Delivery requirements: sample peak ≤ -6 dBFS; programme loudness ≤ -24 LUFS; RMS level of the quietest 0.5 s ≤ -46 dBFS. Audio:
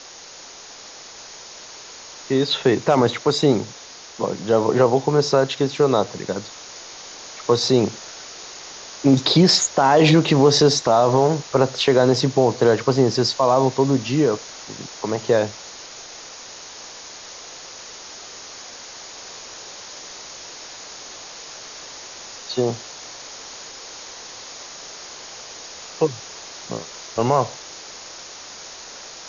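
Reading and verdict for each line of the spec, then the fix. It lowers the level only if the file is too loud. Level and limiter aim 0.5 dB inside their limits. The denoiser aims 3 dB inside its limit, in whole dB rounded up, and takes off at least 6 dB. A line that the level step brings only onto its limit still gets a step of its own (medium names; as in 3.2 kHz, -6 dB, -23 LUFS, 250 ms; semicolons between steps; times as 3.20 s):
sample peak -4.5 dBFS: fail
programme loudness -18.5 LUFS: fail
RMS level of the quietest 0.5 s -41 dBFS: fail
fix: trim -6 dB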